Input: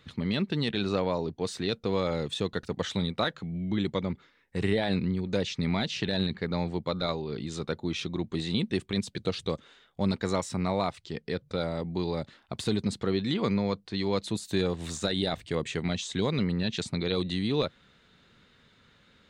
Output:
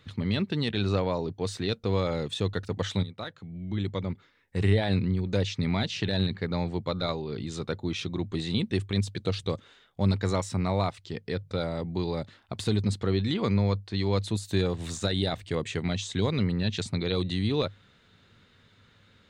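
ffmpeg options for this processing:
ffmpeg -i in.wav -filter_complex "[0:a]asplit=2[link_01][link_02];[link_01]atrim=end=3.03,asetpts=PTS-STARTPTS,afade=type=out:start_time=3.026:duration=0.004:curve=hsin:silence=0.223872[link_03];[link_02]atrim=start=3.03,asetpts=PTS-STARTPTS,afade=type=in:duration=1.53:silence=0.223872[link_04];[link_03][link_04]concat=n=2:v=0:a=1,equalizer=frequency=100:width_type=o:width=0.26:gain=12.5" out.wav

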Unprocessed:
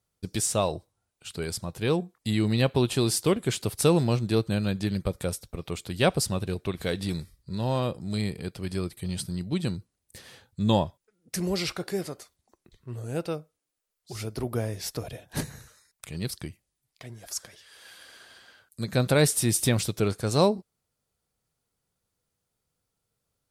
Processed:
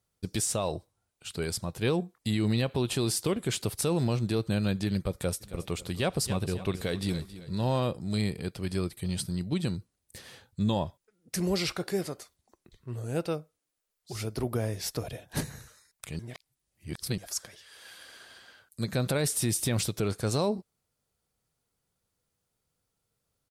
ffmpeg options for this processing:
ffmpeg -i in.wav -filter_complex "[0:a]asplit=3[link_01][link_02][link_03];[link_01]afade=type=out:start_time=5.4:duration=0.02[link_04];[link_02]aecho=1:1:272|544|816:0.168|0.0604|0.0218,afade=type=in:start_time=5.4:duration=0.02,afade=type=out:start_time=7.72:duration=0.02[link_05];[link_03]afade=type=in:start_time=7.72:duration=0.02[link_06];[link_04][link_05][link_06]amix=inputs=3:normalize=0,asplit=3[link_07][link_08][link_09];[link_07]atrim=end=16.192[link_10];[link_08]atrim=start=16.188:end=17.182,asetpts=PTS-STARTPTS,areverse[link_11];[link_09]atrim=start=17.178[link_12];[link_10][link_11]acrossfade=duration=0.004:curve1=hsin:curve2=hsin[link_13];[link_13][link_12]acrossfade=duration=0.004:curve1=hsin:curve2=hsin,alimiter=limit=-19dB:level=0:latency=1:release=66" out.wav

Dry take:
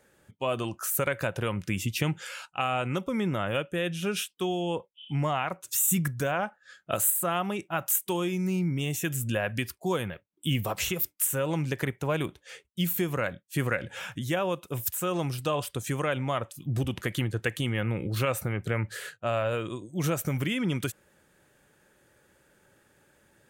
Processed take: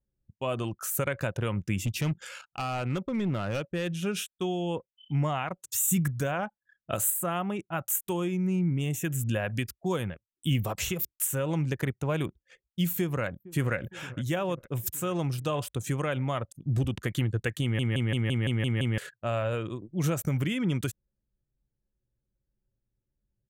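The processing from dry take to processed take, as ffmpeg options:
ffmpeg -i in.wav -filter_complex "[0:a]asettb=1/sr,asplit=3[link_01][link_02][link_03];[link_01]atrim=end=1.824[link_04];[link_02]atrim=start=1.82:end=3.94,asetpts=PTS-STARTPTS,afade=type=in:duration=0.004:curve=qsin,afade=type=out:start_time=2.116:duration=0.004:curve=qsin,volume=24.5dB,asoftclip=hard,volume=-24.5dB[link_05];[link_03]atrim=start=3.936[link_06];[link_04][link_05]acrossfade=duration=0.004:curve1=hsin:curve2=qsin[link_07];[link_07][link_06]acrossfade=duration=0.004:curve1=qsin:curve2=hsin,asettb=1/sr,asplit=3[link_08][link_09][link_10];[link_08]atrim=end=7.144[link_11];[link_09]atrim=start=7.14:end=9.19,asetpts=PTS-STARTPTS,afade=type=in:duration=0.004:curve=qsin,afade=type=out:start_time=2.046:duration=0.004:curve=qsin,equalizer=frequency=4500:width=2.2:gain=-9[link_12];[link_10]atrim=start=9.186[link_13];[link_11][link_12]acrossfade=duration=0.004:curve1=hsin:curve2=qsin[link_14];[link_14][link_13]acrossfade=duration=0.004:curve1=qsin:curve2=hsin,asplit=2[link_15][link_16];[link_16]afade=type=in:start_time=12.91:duration=0.01,afade=type=out:start_time=13.75:duration=0.01,aecho=0:1:460|920|1380|1840|2300|2760|3220:0.133352|0.0866789|0.0563413|0.0366218|0.0238042|0.0154727|0.0100573[link_17];[link_15][link_17]amix=inputs=2:normalize=0,asplit=9[link_18][link_19][link_20][link_21][link_22][link_23][link_24][link_25][link_26];[link_18]atrim=end=17.792[link_27];[link_19]atrim=start=17.618:end=17.792[link_28];[link_20]atrim=start=17.618:end=17.792[link_29];[link_21]atrim=start=17.618:end=17.792[link_30];[link_22]atrim=start=17.618:end=17.792[link_31];[link_23]atrim=start=17.618:end=17.792[link_32];[link_24]atrim=start=17.618:end=17.792[link_33];[link_25]atrim=start=17.618:end=17.792[link_34];[link_26]atrim=start=18.978[link_35];[link_27][link_28]acrossfade=duration=0.004:curve1=hsin:curve2=hsin[link_36];[link_36][link_29]acrossfade=duration=0.004:curve1=hsin:curve2=hsin[link_37];[link_37][link_30]acrossfade=duration=0.004:curve1=hsin:curve2=hsin[link_38];[link_38][link_31]acrossfade=duration=0.004:curve1=hsin:curve2=hsin[link_39];[link_39][link_32]acrossfade=duration=0.004:curve1=hsin:curve2=hsin[link_40];[link_40][link_33]acrossfade=duration=0.004:curve1=hsin:curve2=hsin[link_41];[link_41][link_34]acrossfade=duration=0.004:curve1=hsin:curve2=hsin[link_42];[link_42][link_35]acrossfade=duration=0.004:curve1=hsin:curve2=hsin,equalizer=frequency=7000:width=2.5:gain=3,anlmdn=0.398,lowshelf=frequency=220:gain=7,volume=-3dB" out.wav

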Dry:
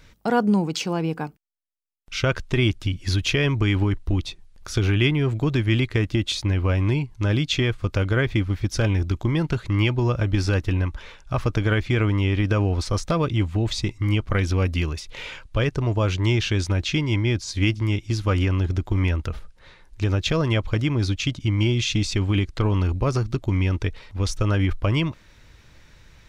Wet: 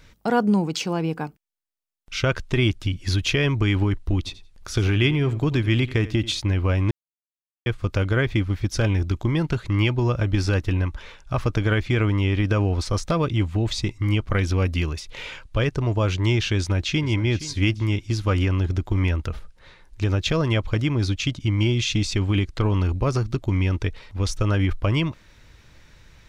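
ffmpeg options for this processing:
ffmpeg -i in.wav -filter_complex "[0:a]asplit=3[link_01][link_02][link_03];[link_01]afade=type=out:start_time=4.25:duration=0.02[link_04];[link_02]aecho=1:1:88|176:0.15|0.0239,afade=type=in:start_time=4.25:duration=0.02,afade=type=out:start_time=6.39:duration=0.02[link_05];[link_03]afade=type=in:start_time=6.39:duration=0.02[link_06];[link_04][link_05][link_06]amix=inputs=3:normalize=0,asplit=2[link_07][link_08];[link_08]afade=type=in:start_time=16.55:duration=0.01,afade=type=out:start_time=17.06:duration=0.01,aecho=0:1:470|940|1410:0.177828|0.0622398|0.0217839[link_09];[link_07][link_09]amix=inputs=2:normalize=0,asplit=3[link_10][link_11][link_12];[link_10]atrim=end=6.91,asetpts=PTS-STARTPTS,afade=type=out:start_time=6.906:duration=0.004:curve=hsin[link_13];[link_11]atrim=start=6.91:end=7.66,asetpts=PTS-STARTPTS,volume=0[link_14];[link_12]atrim=start=7.66,asetpts=PTS-STARTPTS,afade=type=in:duration=0.004:curve=hsin[link_15];[link_13][link_14][link_15]concat=n=3:v=0:a=1" out.wav

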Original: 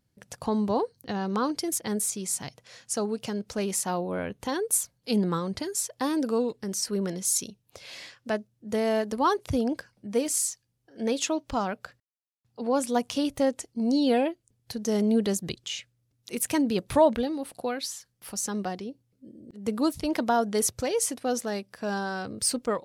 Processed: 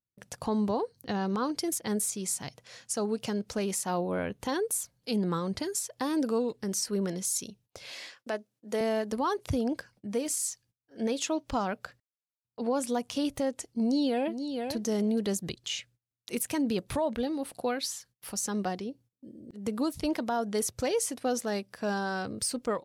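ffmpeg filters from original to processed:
ffmpeg -i in.wav -filter_complex "[0:a]asettb=1/sr,asplit=3[link_01][link_02][link_03];[link_01]atrim=end=7.924[link_04];[link_02]atrim=start=7.92:end=8.81,asetpts=PTS-STARTPTS,afade=type=in:duration=0.004:curve=qsin,afade=type=out:start_time=0.886:duration=0.004:curve=qsin,highpass=290[link_05];[link_03]atrim=start=8.806[link_06];[link_04][link_05]acrossfade=duration=0.004:curve1=hsin:curve2=qsin[link_07];[link_07][link_06]acrossfade=duration=0.004:curve1=qsin:curve2=hsin,asplit=2[link_08][link_09];[link_09]afade=type=in:start_time=13.8:duration=0.01,afade=type=out:start_time=14.73:duration=0.01,aecho=0:1:470|940:0.281838|0.0281838[link_10];[link_08][link_10]amix=inputs=2:normalize=0,agate=range=-24dB:threshold=-56dB:ratio=16:detection=peak,alimiter=limit=-20.5dB:level=0:latency=1:release=196" out.wav

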